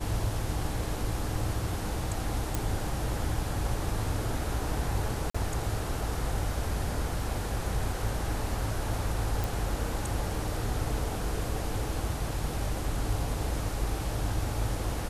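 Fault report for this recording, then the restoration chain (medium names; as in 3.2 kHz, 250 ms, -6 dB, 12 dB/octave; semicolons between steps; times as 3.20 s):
2.55 s: pop
5.30–5.34 s: dropout 45 ms
9.44 s: pop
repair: de-click; interpolate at 5.30 s, 45 ms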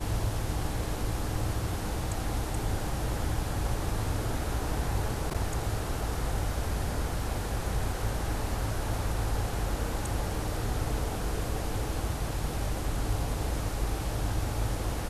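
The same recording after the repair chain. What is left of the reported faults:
nothing left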